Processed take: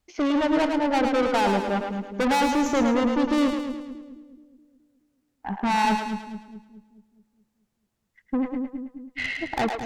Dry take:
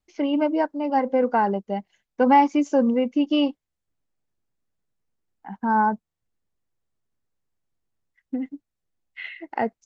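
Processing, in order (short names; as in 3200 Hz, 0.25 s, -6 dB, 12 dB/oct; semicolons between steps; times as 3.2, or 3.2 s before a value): tube stage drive 29 dB, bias 0.45; split-band echo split 410 Hz, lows 0.212 s, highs 0.108 s, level -5 dB; gain +8.5 dB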